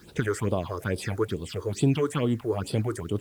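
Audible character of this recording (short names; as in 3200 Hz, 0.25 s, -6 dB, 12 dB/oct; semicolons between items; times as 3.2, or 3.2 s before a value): phasing stages 6, 2.3 Hz, lowest notch 180–1900 Hz; a quantiser's noise floor 10-bit, dither none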